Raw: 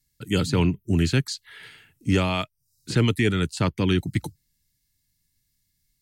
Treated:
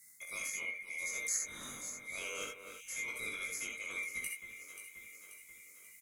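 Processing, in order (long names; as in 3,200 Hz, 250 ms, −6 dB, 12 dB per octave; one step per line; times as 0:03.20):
neighbouring bands swapped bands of 2,000 Hz
thirty-one-band graphic EQ 500 Hz +4 dB, 800 Hz −10 dB, 10,000 Hz +4 dB
reversed playback
downward compressor 10 to 1, threshold −33 dBFS, peak gain reduction 18 dB
reversed playback
high shelf with overshoot 5,400 Hz +11 dB, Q 1.5
double-tracking delay 20 ms −3 dB
on a send: delay that swaps between a low-pass and a high-pass 267 ms, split 2,400 Hz, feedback 68%, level −10 dB
on the sum: reverb whose tail is shaped and stops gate 90 ms rising, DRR 1 dB
multiband upward and downward compressor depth 40%
level −8 dB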